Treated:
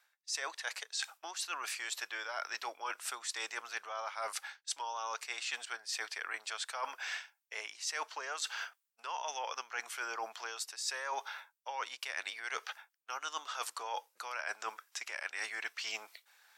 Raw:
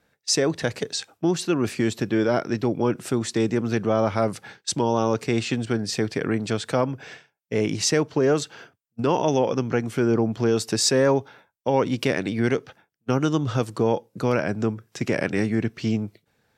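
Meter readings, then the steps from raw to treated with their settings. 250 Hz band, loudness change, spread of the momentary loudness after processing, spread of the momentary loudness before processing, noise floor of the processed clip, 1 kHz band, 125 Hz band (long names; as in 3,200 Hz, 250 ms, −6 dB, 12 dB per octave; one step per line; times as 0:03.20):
below −40 dB, −15.5 dB, 5 LU, 7 LU, −80 dBFS, −10.0 dB, below −40 dB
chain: high-pass filter 900 Hz 24 dB per octave
high-shelf EQ 5,300 Hz +4 dB
reversed playback
downward compressor 16 to 1, threshold −41 dBFS, peak gain reduction 26 dB
reversed playback
level +5.5 dB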